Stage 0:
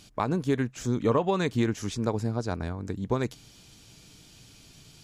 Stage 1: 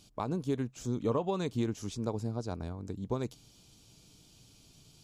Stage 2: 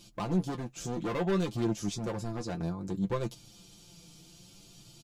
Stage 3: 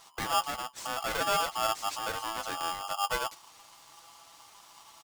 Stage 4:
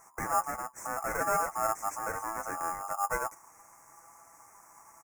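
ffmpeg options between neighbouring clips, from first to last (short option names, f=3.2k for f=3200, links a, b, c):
-af "equalizer=f=1.8k:t=o:w=0.83:g=-9.5,volume=-6dB"
-af "asoftclip=type=hard:threshold=-32.5dB,flanger=delay=8.8:depth=3.9:regen=36:speed=0.6:shape=triangular,aecho=1:1:5.8:0.74,volume=7dB"
-af "aeval=exprs='val(0)*sgn(sin(2*PI*1000*n/s))':c=same"
-af "asuperstop=centerf=3600:order=8:qfactor=0.92"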